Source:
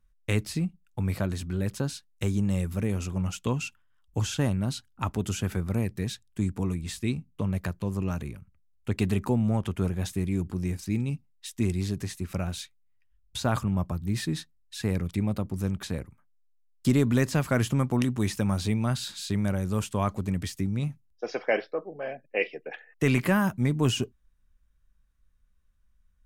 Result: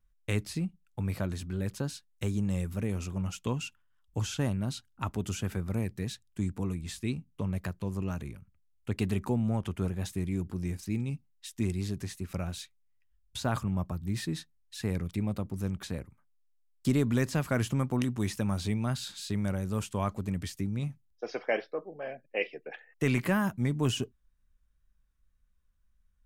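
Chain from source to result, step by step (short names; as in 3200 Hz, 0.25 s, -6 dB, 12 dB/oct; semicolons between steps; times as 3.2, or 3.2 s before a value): wow and flutter 35 cents; gain -4 dB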